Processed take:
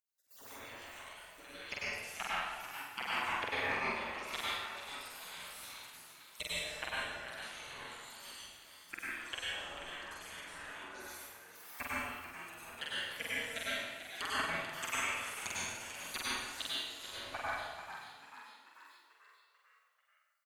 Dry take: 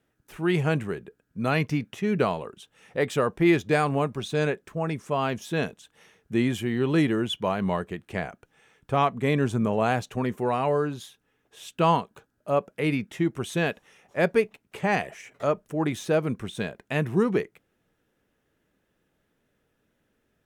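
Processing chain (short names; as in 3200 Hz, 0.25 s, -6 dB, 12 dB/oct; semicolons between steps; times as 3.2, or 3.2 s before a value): random spectral dropouts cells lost 38%; treble ducked by the level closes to 850 Hz, closed at -21.5 dBFS; pre-emphasis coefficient 0.8; spectral gate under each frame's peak -25 dB weak; high shelf 3200 Hz +5.5 dB; level quantiser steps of 19 dB; doubler 46 ms -2 dB; frequency-shifting echo 0.44 s, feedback 56%, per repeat +88 Hz, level -10 dB; plate-style reverb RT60 1.3 s, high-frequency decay 0.75×, pre-delay 85 ms, DRR -7.5 dB; gain +17.5 dB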